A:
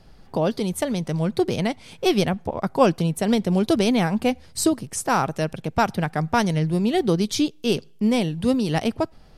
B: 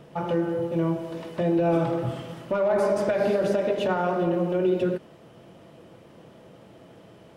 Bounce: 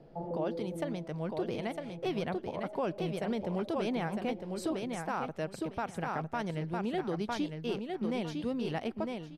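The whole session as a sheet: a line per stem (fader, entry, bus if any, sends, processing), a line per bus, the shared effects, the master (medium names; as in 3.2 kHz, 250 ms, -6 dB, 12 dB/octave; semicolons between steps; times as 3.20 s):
-10.0 dB, 0.00 s, no send, echo send -5.5 dB, tone controls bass -6 dB, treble -13 dB
-6.0 dB, 0.00 s, no send, no echo send, elliptic band-pass 140–790 Hz; peak limiter -20.5 dBFS, peak gain reduction 6.5 dB; auto duck -14 dB, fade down 1.70 s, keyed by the first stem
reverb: none
echo: feedback delay 955 ms, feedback 21%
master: peak limiter -24 dBFS, peak gain reduction 9 dB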